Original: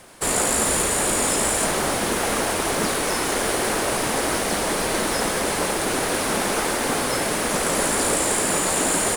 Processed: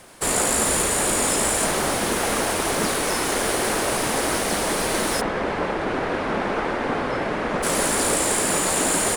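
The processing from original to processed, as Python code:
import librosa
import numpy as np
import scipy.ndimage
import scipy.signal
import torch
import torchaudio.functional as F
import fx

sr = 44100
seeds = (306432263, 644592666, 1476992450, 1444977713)

y = fx.lowpass(x, sr, hz=2200.0, slope=12, at=(5.2, 7.62), fade=0.02)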